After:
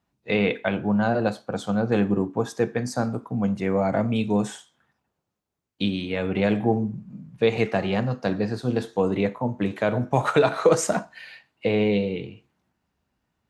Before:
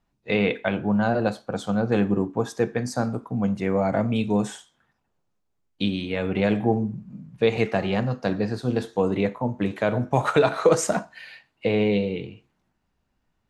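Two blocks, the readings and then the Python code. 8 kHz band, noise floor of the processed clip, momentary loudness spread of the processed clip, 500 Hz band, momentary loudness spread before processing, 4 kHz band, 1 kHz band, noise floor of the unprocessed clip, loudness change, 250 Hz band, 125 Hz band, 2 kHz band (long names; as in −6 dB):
0.0 dB, −79 dBFS, 8 LU, 0.0 dB, 8 LU, 0.0 dB, 0.0 dB, −74 dBFS, 0.0 dB, 0.0 dB, −0.5 dB, 0.0 dB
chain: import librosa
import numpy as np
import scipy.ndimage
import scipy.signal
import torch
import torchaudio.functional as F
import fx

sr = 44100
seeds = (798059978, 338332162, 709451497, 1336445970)

y = scipy.signal.sosfilt(scipy.signal.butter(2, 61.0, 'highpass', fs=sr, output='sos'), x)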